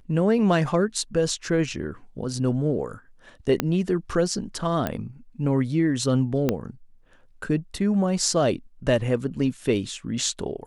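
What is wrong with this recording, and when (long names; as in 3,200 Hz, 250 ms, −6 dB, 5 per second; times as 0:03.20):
0:03.60: click −7 dBFS
0:04.87: click −12 dBFS
0:06.49: click −9 dBFS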